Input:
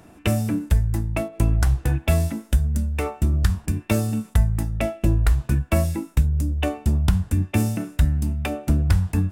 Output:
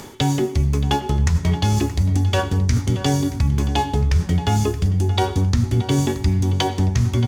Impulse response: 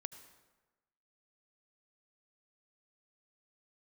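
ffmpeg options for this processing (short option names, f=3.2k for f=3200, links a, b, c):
-filter_complex "[0:a]acrossover=split=5500[a][b];[b]acompressor=threshold=-52dB:ratio=4:attack=1:release=60[c];[a][c]amix=inputs=2:normalize=0,equalizer=f=4.7k:t=o:w=1.1:g=13.5,areverse,acompressor=threshold=-29dB:ratio=6,areverse,asetrate=56448,aresample=44100,asplit=2[d][e];[e]adelay=625,lowpass=f=4.3k:p=1,volume=-13dB,asplit=2[f][g];[g]adelay=625,lowpass=f=4.3k:p=1,volume=0.46,asplit=2[h][i];[i]adelay=625,lowpass=f=4.3k:p=1,volume=0.46,asplit=2[j][k];[k]adelay=625,lowpass=f=4.3k:p=1,volume=0.46,asplit=2[l][m];[m]adelay=625,lowpass=f=4.3k:p=1,volume=0.46[n];[d][f][h][j][l][n]amix=inputs=6:normalize=0,asplit=2[o][p];[1:a]atrim=start_sample=2205,afade=t=out:st=0.3:d=0.01,atrim=end_sample=13671[q];[p][q]afir=irnorm=-1:irlink=0,volume=11.5dB[r];[o][r]amix=inputs=2:normalize=0,volume=2dB"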